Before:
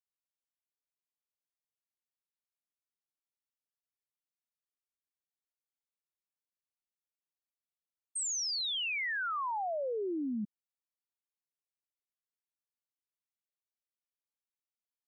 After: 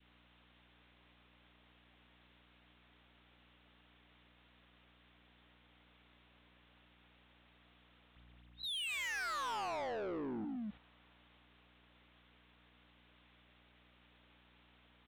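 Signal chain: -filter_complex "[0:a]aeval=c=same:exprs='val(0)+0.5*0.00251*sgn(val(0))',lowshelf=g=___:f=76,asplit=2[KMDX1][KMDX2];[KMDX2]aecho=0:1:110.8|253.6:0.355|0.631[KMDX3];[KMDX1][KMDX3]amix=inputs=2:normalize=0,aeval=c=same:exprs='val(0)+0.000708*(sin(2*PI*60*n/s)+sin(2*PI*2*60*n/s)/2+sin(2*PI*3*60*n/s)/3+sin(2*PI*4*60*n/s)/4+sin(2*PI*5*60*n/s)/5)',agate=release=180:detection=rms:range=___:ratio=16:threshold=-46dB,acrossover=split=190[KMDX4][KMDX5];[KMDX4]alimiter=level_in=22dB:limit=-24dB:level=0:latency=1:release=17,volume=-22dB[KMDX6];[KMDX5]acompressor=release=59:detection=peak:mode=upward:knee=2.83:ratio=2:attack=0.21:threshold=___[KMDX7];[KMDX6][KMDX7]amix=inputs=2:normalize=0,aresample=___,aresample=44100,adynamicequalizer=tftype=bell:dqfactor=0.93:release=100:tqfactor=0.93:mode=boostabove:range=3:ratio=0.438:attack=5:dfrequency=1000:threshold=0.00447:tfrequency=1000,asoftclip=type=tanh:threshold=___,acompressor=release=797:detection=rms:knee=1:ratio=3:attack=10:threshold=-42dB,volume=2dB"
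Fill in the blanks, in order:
-11, -10dB, -48dB, 8000, -36.5dB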